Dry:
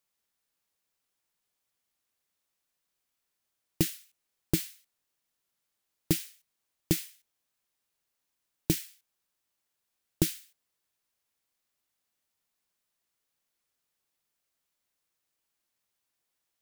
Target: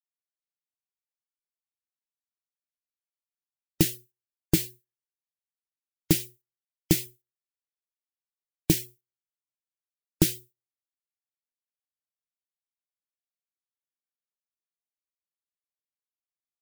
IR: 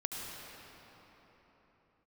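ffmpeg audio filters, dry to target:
-af "bandreject=f=121.4:t=h:w=4,bandreject=f=242.8:t=h:w=4,bandreject=f=364.2:t=h:w=4,bandreject=f=485.6:t=h:w=4,bandreject=f=607:t=h:w=4,bandreject=f=728.4:t=h:w=4,bandreject=f=849.8:t=h:w=4,bandreject=f=971.2:t=h:w=4,bandreject=f=1092.6:t=h:w=4,bandreject=f=1214:t=h:w=4,bandreject=f=1335.4:t=h:w=4,bandreject=f=1456.8:t=h:w=4,bandreject=f=1578.2:t=h:w=4,bandreject=f=1699.6:t=h:w=4,bandreject=f=1821:t=h:w=4,bandreject=f=1942.4:t=h:w=4,acontrast=36,afftdn=nr=30:nf=-43"

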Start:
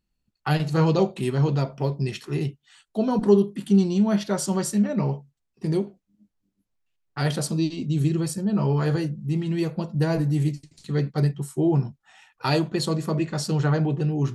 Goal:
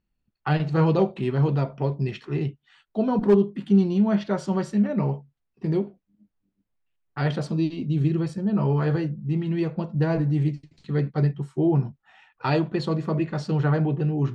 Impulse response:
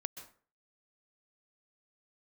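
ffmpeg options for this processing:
-af "lowpass=2900,asoftclip=type=hard:threshold=0.316"

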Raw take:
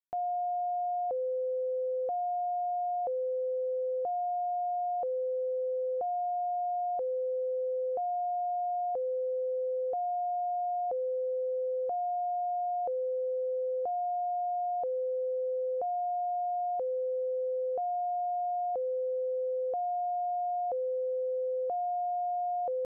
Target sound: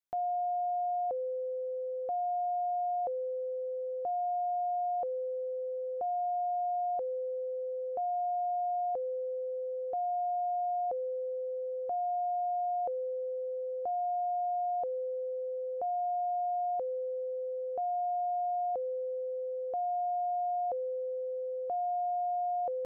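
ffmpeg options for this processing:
-af "adynamicequalizer=threshold=0.00501:dfrequency=490:dqfactor=5.6:tfrequency=490:tqfactor=5.6:attack=5:release=100:ratio=0.375:range=3:mode=cutabove:tftype=bell"

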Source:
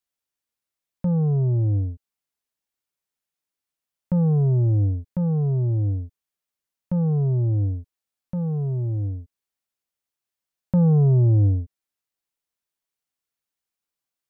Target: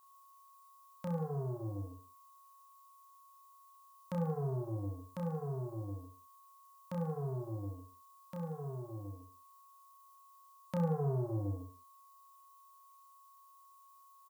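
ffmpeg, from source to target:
-af "aderivative,aeval=exprs='val(0)+0.000141*sin(2*PI*1100*n/s)':c=same,aecho=1:1:30|63|99.3|139.2|183.2:0.631|0.398|0.251|0.158|0.1,volume=4.47"

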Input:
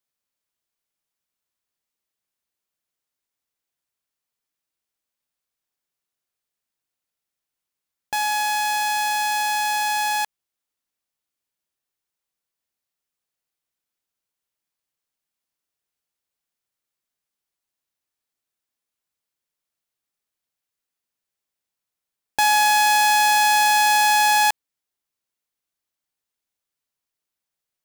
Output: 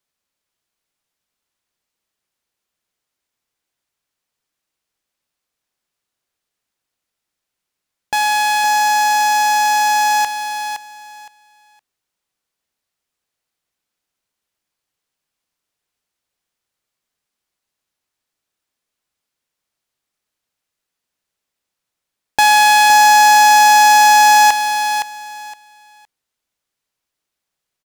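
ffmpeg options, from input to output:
-af "highshelf=f=11000:g=-8.5,aecho=1:1:515|1030|1545:0.398|0.0796|0.0159,volume=2.24"

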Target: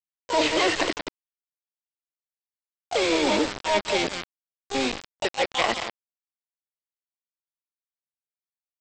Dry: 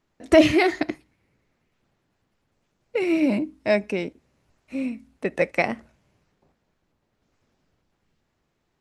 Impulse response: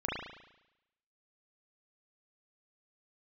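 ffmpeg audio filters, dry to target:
-filter_complex "[0:a]highpass=440,areverse,acompressor=threshold=0.0316:ratio=10,areverse,aecho=1:1:180:0.376,aresample=11025,acrusher=bits=5:mix=0:aa=0.000001,aresample=44100,acontrast=61,asplit=2[s0][s1];[s1]asetrate=66075,aresample=44100,atempo=0.66742,volume=0.794[s2];[s0][s2]amix=inputs=2:normalize=0,volume=1.19"

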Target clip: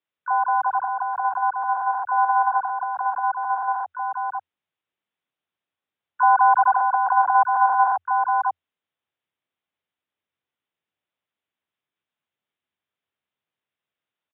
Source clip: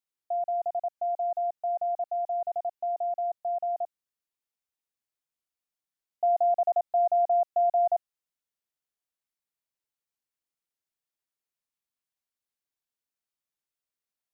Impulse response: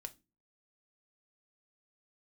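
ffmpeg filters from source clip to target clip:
-filter_complex "[0:a]aecho=1:1:543:0.531,asplit=3[s0][s1][s2];[s1]asetrate=58866,aresample=44100,atempo=0.749154,volume=0.891[s3];[s2]asetrate=88200,aresample=44100,atempo=0.5,volume=0.282[s4];[s0][s3][s4]amix=inputs=3:normalize=0,afreqshift=83,aresample=8000,aresample=44100,volume=1.88"

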